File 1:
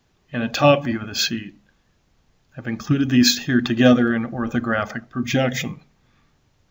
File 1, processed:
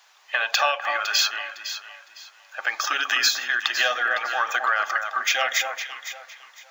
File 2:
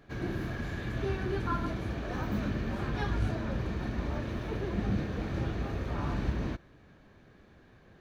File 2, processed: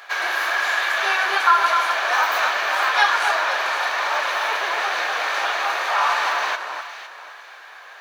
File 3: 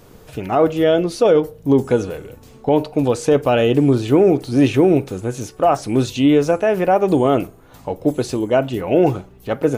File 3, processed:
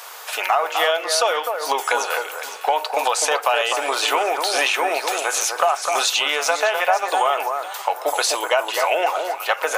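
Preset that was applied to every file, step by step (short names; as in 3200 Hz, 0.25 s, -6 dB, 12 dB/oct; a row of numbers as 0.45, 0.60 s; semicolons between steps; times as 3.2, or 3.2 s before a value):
inverse Chebyshev high-pass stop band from 180 Hz, stop band 70 dB; compressor 6:1, threshold -33 dBFS; on a send: echo with dull and thin repeats by turns 0.254 s, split 1700 Hz, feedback 50%, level -5 dB; on the sum: normalise peaks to -3 dBFS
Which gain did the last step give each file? +13.0, +23.0, +16.5 dB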